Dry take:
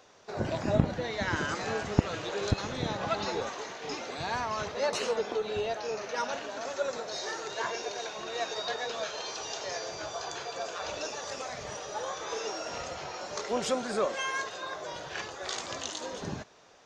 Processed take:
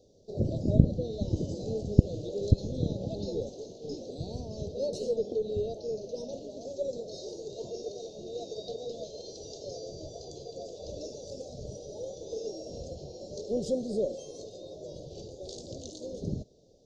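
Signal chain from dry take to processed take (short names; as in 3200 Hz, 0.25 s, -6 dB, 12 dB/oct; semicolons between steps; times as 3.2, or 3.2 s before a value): elliptic band-stop 550–4200 Hz, stop band 60 dB; tilt -2.5 dB/oct; gain -1.5 dB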